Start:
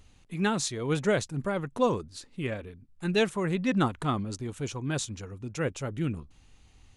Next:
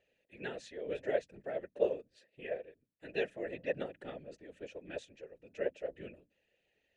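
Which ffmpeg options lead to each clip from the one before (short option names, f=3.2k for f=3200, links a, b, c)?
-filter_complex "[0:a]asplit=3[a][b][c];[a]bandpass=f=530:t=q:w=8,volume=0dB[d];[b]bandpass=f=1.84k:t=q:w=8,volume=-6dB[e];[c]bandpass=f=2.48k:t=q:w=8,volume=-9dB[f];[d][e][f]amix=inputs=3:normalize=0,bandreject=f=60:t=h:w=6,bandreject=f=120:t=h:w=6,bandreject=f=180:t=h:w=6,bandreject=f=240:t=h:w=6,afftfilt=real='hypot(re,im)*cos(2*PI*random(0))':imag='hypot(re,im)*sin(2*PI*random(1))':win_size=512:overlap=0.75,volume=7dB"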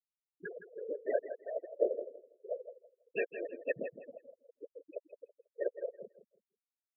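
-af "afftfilt=real='re*gte(hypot(re,im),0.0398)':imag='im*gte(hypot(re,im),0.0398)':win_size=1024:overlap=0.75,adynamicequalizer=threshold=0.00224:dfrequency=1800:dqfactor=0.72:tfrequency=1800:tqfactor=0.72:attack=5:release=100:ratio=0.375:range=3:mode=boostabove:tftype=bell,aecho=1:1:164|328|492:0.282|0.0648|0.0149,volume=-1dB"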